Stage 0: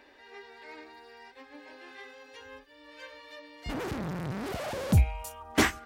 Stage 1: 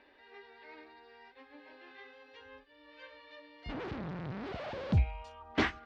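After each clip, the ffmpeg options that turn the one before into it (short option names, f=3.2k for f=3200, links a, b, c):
-af "lowpass=f=4.3k:w=0.5412,lowpass=f=4.3k:w=1.3066,volume=-5.5dB"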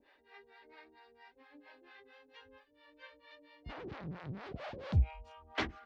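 -filter_complex "[0:a]acrossover=split=490[a][b];[a]aeval=exprs='val(0)*(1-1/2+1/2*cos(2*PI*4.4*n/s))':c=same[c];[b]aeval=exprs='val(0)*(1-1/2-1/2*cos(2*PI*4.4*n/s))':c=same[d];[c][d]amix=inputs=2:normalize=0"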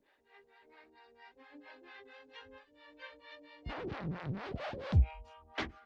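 -af "dynaudnorm=f=260:g=9:m=8dB,volume=-3.5dB" -ar 48000 -c:a libopus -b:a 24k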